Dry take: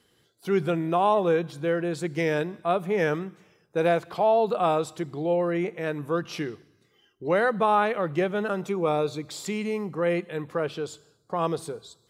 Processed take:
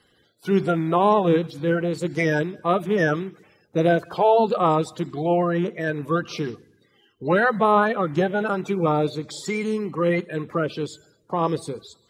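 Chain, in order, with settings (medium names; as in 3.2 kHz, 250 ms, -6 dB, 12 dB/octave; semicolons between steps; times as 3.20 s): coarse spectral quantiser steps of 30 dB; treble shelf 7 kHz -4.5 dB; trim +4.5 dB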